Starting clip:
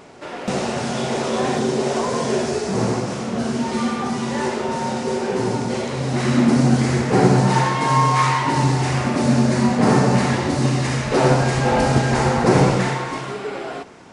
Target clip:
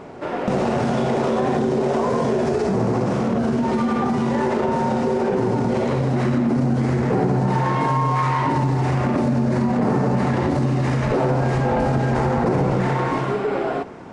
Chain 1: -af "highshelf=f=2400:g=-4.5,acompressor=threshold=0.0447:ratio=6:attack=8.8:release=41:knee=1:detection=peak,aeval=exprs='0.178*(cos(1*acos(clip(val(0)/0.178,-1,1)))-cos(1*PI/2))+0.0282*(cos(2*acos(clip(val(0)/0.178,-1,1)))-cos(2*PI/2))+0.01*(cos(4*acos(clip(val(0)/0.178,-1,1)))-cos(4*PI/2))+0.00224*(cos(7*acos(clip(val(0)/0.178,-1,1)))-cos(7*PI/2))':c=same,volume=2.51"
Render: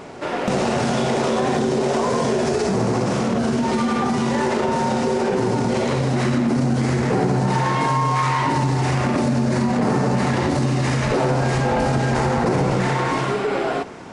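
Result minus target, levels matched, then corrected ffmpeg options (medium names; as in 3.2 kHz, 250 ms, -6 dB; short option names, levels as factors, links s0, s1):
4 kHz band +7.0 dB
-af "highshelf=f=2400:g=-16,acompressor=threshold=0.0447:ratio=6:attack=8.8:release=41:knee=1:detection=peak,aeval=exprs='0.178*(cos(1*acos(clip(val(0)/0.178,-1,1)))-cos(1*PI/2))+0.0282*(cos(2*acos(clip(val(0)/0.178,-1,1)))-cos(2*PI/2))+0.01*(cos(4*acos(clip(val(0)/0.178,-1,1)))-cos(4*PI/2))+0.00224*(cos(7*acos(clip(val(0)/0.178,-1,1)))-cos(7*PI/2))':c=same,volume=2.51"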